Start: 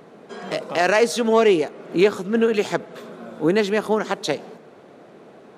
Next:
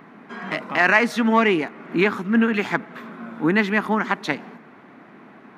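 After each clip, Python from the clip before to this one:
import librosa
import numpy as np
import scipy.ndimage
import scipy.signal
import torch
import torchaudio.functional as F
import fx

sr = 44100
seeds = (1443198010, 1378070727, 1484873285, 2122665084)

y = fx.graphic_eq(x, sr, hz=(250, 500, 1000, 2000, 4000, 8000), db=(9, -10, 7, 10, -3, -9))
y = y * 10.0 ** (-2.5 / 20.0)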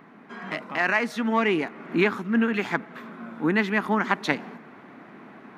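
y = fx.rider(x, sr, range_db=10, speed_s=0.5)
y = y * 10.0 ** (-3.5 / 20.0)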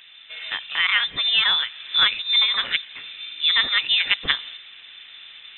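y = fx.freq_invert(x, sr, carrier_hz=3800)
y = y * 10.0 ** (3.0 / 20.0)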